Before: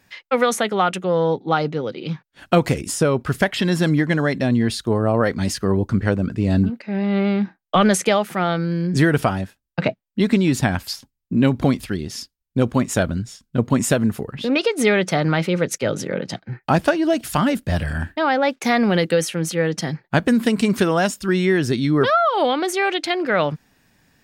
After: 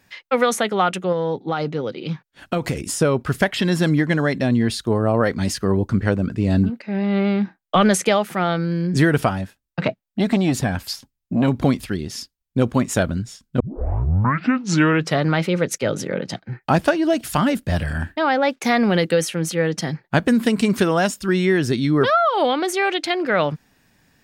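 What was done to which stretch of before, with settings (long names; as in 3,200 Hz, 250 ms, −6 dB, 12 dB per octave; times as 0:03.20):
0:01.12–0:02.83: downward compressor, threshold −17 dBFS
0:09.29–0:11.48: saturating transformer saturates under 420 Hz
0:13.60: tape start 1.66 s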